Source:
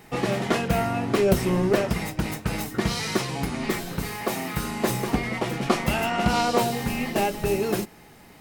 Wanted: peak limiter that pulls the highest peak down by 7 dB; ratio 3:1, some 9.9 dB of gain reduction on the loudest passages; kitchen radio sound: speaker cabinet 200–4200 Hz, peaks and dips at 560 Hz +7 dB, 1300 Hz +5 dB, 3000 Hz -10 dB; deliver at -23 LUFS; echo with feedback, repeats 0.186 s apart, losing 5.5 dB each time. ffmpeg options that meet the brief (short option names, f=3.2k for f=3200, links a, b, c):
-af "acompressor=threshold=-29dB:ratio=3,alimiter=limit=-22dB:level=0:latency=1,highpass=200,equalizer=f=560:t=q:w=4:g=7,equalizer=f=1.3k:t=q:w=4:g=5,equalizer=f=3k:t=q:w=4:g=-10,lowpass=f=4.2k:w=0.5412,lowpass=f=4.2k:w=1.3066,aecho=1:1:186|372|558|744|930|1116|1302:0.531|0.281|0.149|0.079|0.0419|0.0222|0.0118,volume=8.5dB"